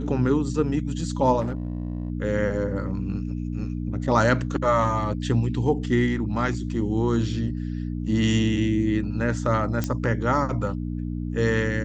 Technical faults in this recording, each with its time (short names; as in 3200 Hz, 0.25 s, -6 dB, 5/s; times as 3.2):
hum 60 Hz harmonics 5 -29 dBFS
1.4–2.1 clipped -23.5 dBFS
9.84 pop -12 dBFS